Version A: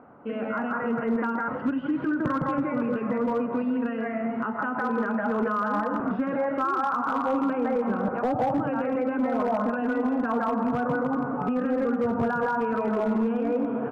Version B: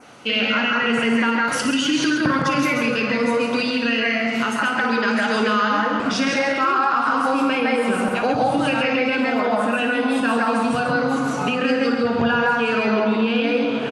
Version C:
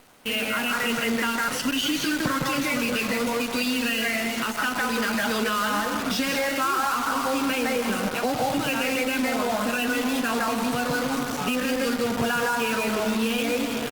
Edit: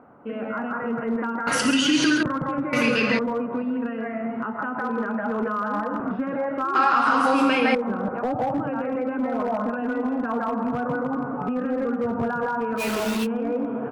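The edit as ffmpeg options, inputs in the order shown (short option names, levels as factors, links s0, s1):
-filter_complex "[1:a]asplit=3[s0][s1][s2];[0:a]asplit=5[s3][s4][s5][s6][s7];[s3]atrim=end=1.472[s8];[s0]atrim=start=1.468:end=2.232[s9];[s4]atrim=start=2.228:end=2.732[s10];[s1]atrim=start=2.728:end=3.192[s11];[s5]atrim=start=3.188:end=6.752[s12];[s2]atrim=start=6.748:end=7.752[s13];[s6]atrim=start=7.748:end=12.81[s14];[2:a]atrim=start=12.77:end=13.27[s15];[s7]atrim=start=13.23[s16];[s8][s9]acrossfade=d=0.004:c1=hsin:c2=hsin[s17];[s17][s10]acrossfade=d=0.004:c1=hsin:c2=hsin[s18];[s18][s11]acrossfade=d=0.004:c1=hsin:c2=hsin[s19];[s19][s12]acrossfade=d=0.004:c1=hsin:c2=hsin[s20];[s20][s13]acrossfade=d=0.004:c1=hsin:c2=hsin[s21];[s21][s14]acrossfade=d=0.004:c1=hsin:c2=hsin[s22];[s22][s15]acrossfade=d=0.04:c1=tri:c2=tri[s23];[s23][s16]acrossfade=d=0.04:c1=tri:c2=tri"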